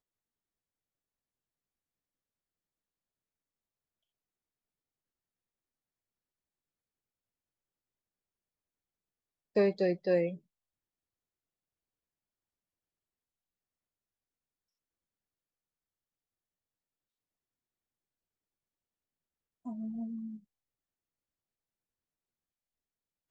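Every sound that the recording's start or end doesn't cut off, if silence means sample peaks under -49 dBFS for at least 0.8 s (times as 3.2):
9.56–10.37
19.65–20.38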